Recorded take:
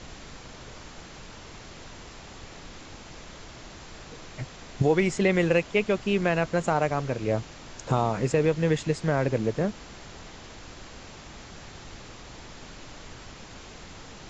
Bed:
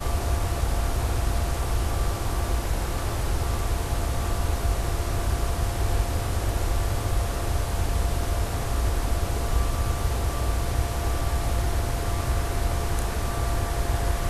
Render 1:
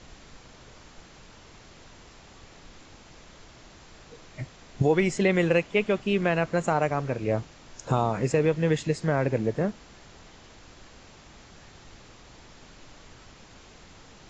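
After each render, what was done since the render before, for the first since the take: noise print and reduce 6 dB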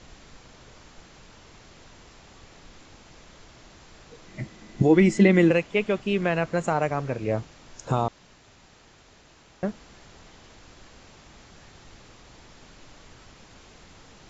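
4.26–5.51 s: small resonant body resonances 210/320/2000 Hz, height 13 dB, ringing for 95 ms; 8.08–9.63 s: room tone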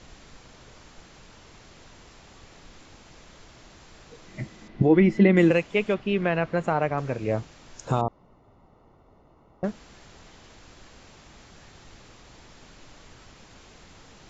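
4.68–5.37 s: distance through air 240 m; 5.94–6.98 s: low-pass 3.7 kHz; 8.01–9.64 s: Savitzky-Golay filter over 65 samples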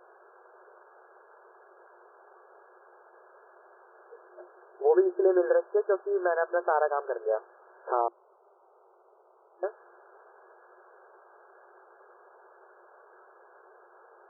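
FFT band-pass 350–1700 Hz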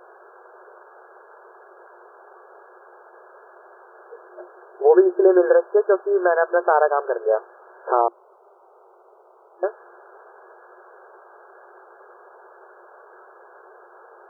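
trim +8.5 dB

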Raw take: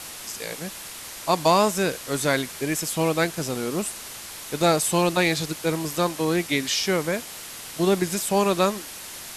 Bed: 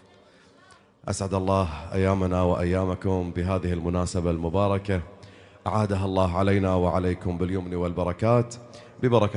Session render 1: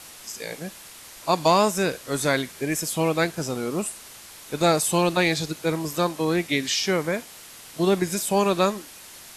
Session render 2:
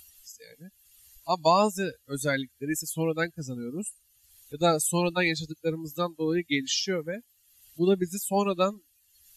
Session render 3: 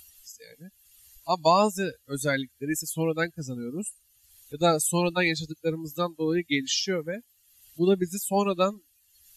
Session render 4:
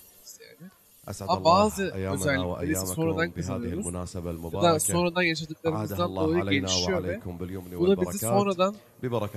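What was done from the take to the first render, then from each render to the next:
noise print and reduce 6 dB
expander on every frequency bin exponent 2; upward compressor, threshold -44 dBFS
trim +1 dB
add bed -8.5 dB

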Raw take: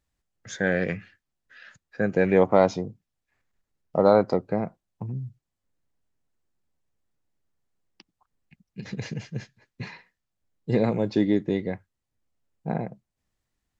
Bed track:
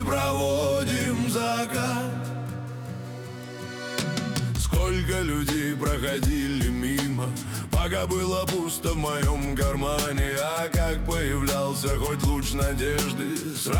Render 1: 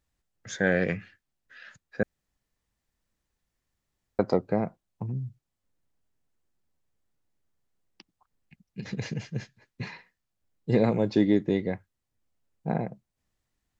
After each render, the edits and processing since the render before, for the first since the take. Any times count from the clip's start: 2.03–4.19 s: room tone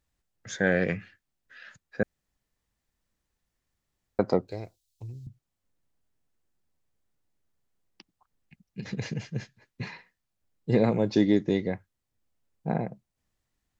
4.48–5.27 s: FFT filter 100 Hz 0 dB, 180 Hz -24 dB, 350 Hz -7 dB, 1.3 kHz -19 dB, 4 kHz +12 dB; 11.13–11.68 s: resonant low-pass 6 kHz, resonance Q 3.3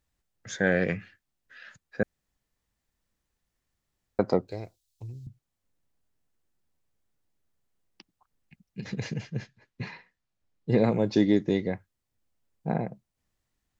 9.21–10.78 s: distance through air 59 m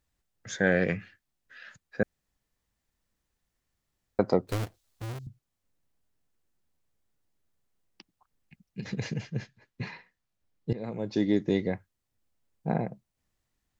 4.47–5.19 s: square wave that keeps the level; 10.73–11.58 s: fade in, from -22 dB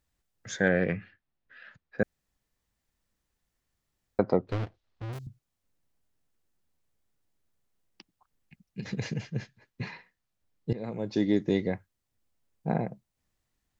0.68–1.99 s: distance through air 250 m; 4.20–5.13 s: distance through air 220 m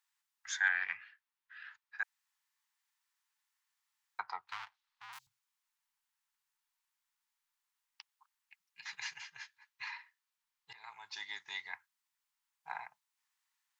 elliptic high-pass 890 Hz, stop band 40 dB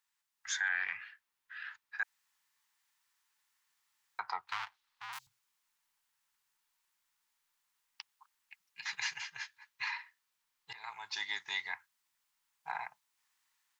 level rider gain up to 6 dB; peak limiter -23.5 dBFS, peak gain reduction 11 dB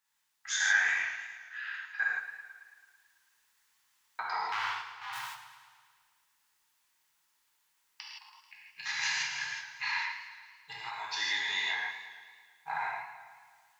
gated-style reverb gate 190 ms flat, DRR -5.5 dB; modulated delay 110 ms, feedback 65%, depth 74 cents, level -11.5 dB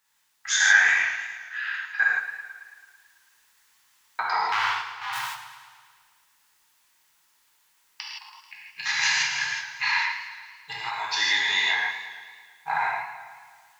trim +9 dB

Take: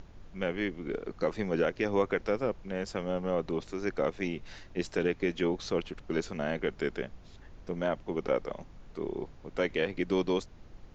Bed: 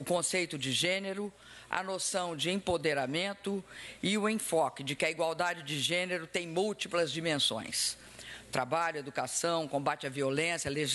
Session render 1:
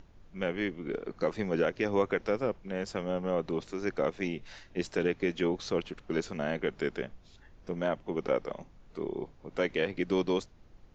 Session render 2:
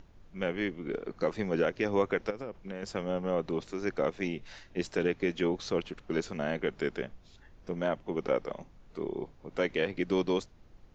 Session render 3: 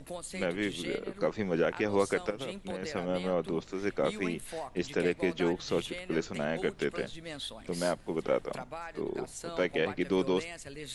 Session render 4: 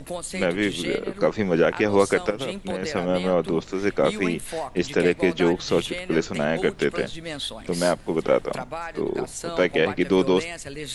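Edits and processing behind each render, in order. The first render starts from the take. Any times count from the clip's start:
noise print and reduce 6 dB
2.30–2.83 s: compression 12:1, threshold -33 dBFS
add bed -10.5 dB
trim +9 dB

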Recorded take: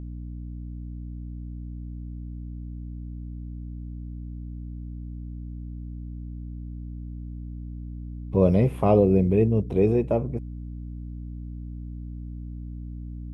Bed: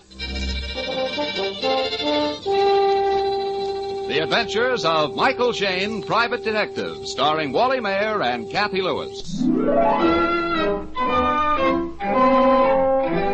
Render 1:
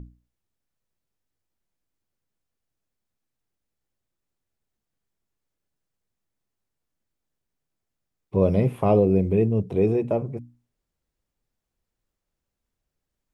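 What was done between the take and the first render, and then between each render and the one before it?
hum notches 60/120/180/240/300 Hz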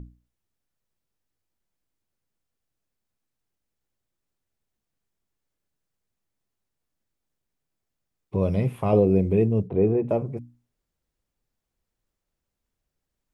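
8.36–8.93 s: peaking EQ 420 Hz -6 dB 2.3 oct; 9.67–10.09 s: low-pass 1.7 kHz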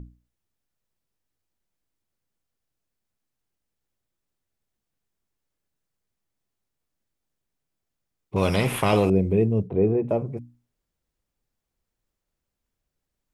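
8.36–9.10 s: spectrum-flattening compressor 2:1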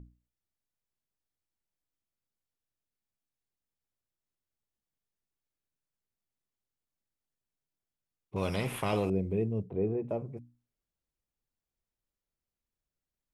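trim -10 dB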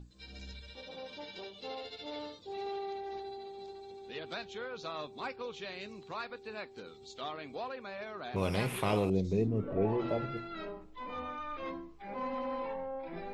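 add bed -21.5 dB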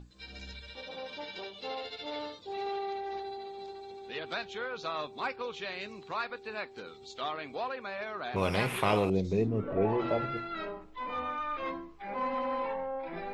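peaking EQ 1.5 kHz +6.5 dB 3 oct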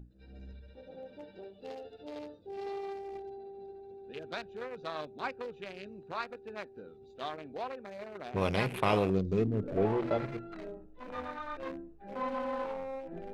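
local Wiener filter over 41 samples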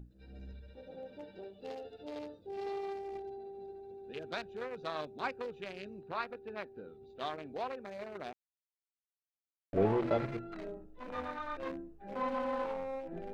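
6.01–7.21 s: peaking EQ 7.1 kHz -12 dB; 8.33–9.73 s: mute

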